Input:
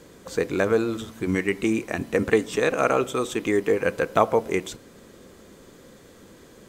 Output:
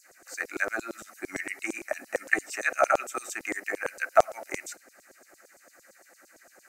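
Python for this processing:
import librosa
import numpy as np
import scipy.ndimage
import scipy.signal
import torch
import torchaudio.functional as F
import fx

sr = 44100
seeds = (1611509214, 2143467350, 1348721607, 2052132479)

y = fx.fixed_phaser(x, sr, hz=680.0, stages=8)
y = fx.filter_lfo_highpass(y, sr, shape='saw_down', hz=8.8, low_hz=450.0, high_hz=6900.0, q=2.0)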